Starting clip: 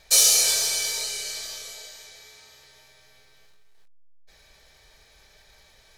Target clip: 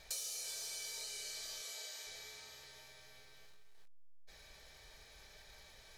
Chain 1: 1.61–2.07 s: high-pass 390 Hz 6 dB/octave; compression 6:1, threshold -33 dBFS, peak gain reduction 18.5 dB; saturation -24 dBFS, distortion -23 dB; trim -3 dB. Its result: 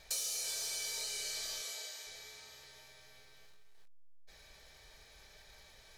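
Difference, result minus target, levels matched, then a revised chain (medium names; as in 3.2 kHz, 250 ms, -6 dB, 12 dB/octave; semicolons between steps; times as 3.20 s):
compression: peak gain reduction -6 dB
1.61–2.07 s: high-pass 390 Hz 6 dB/octave; compression 6:1, threshold -40 dBFS, peak gain reduction 24 dB; saturation -24 dBFS, distortion -33 dB; trim -3 dB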